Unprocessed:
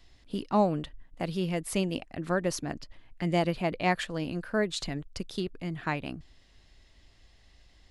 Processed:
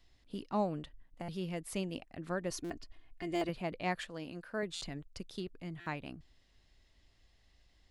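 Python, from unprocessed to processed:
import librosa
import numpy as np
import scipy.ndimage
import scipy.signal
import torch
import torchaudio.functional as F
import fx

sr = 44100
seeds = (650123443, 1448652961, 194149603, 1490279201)

y = fx.comb(x, sr, ms=2.8, depth=0.72, at=(2.5, 3.49))
y = fx.low_shelf(y, sr, hz=150.0, db=-10.0, at=(4.09, 4.63))
y = fx.buffer_glitch(y, sr, at_s=(1.22, 2.64, 3.35, 4.75, 5.8), block=256, repeats=10)
y = y * 10.0 ** (-8.5 / 20.0)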